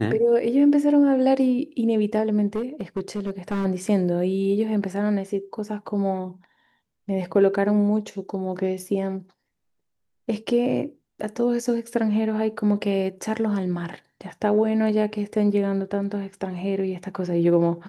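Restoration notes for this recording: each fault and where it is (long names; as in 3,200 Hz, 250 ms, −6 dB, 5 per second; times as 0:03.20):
0:02.55–0:03.66: clipping −21 dBFS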